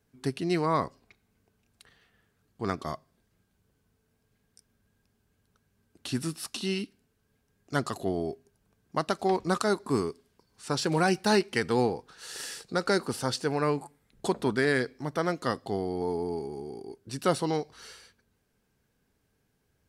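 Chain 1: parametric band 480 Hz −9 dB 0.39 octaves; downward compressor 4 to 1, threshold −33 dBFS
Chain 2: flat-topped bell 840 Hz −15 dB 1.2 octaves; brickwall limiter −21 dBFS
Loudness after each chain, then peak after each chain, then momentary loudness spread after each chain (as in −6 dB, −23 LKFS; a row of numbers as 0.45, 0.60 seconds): −38.5, −33.5 LKFS; −19.0, −21.0 dBFS; 9, 11 LU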